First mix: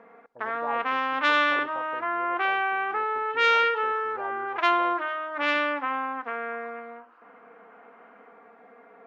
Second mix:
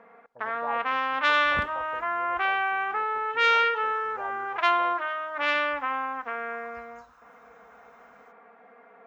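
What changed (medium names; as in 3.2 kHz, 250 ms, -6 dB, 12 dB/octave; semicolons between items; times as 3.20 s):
second sound: remove brick-wall FIR band-pass 280–3200 Hz; master: add peaking EQ 320 Hz -8.5 dB 0.68 oct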